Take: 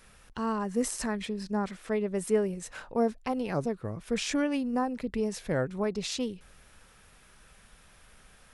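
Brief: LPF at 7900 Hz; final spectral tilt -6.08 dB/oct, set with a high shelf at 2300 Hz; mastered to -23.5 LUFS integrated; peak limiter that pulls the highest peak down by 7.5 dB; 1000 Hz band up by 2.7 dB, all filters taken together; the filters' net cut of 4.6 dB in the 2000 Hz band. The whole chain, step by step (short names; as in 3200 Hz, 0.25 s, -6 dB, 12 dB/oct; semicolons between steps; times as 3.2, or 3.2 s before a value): LPF 7900 Hz; bell 1000 Hz +6 dB; bell 2000 Hz -4 dB; high shelf 2300 Hz -9 dB; gain +9.5 dB; limiter -12.5 dBFS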